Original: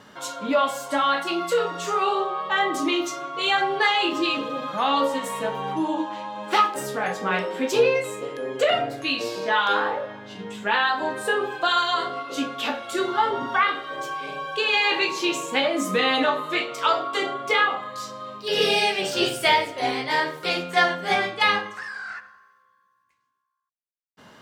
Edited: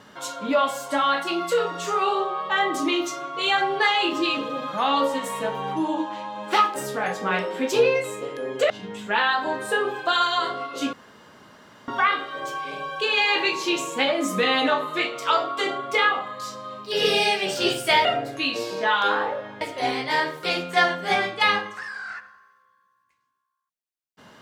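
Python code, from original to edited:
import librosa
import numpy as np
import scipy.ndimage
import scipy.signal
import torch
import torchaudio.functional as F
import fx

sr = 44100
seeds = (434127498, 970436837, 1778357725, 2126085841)

y = fx.edit(x, sr, fx.move(start_s=8.7, length_s=1.56, to_s=19.61),
    fx.room_tone_fill(start_s=12.49, length_s=0.95), tone=tone)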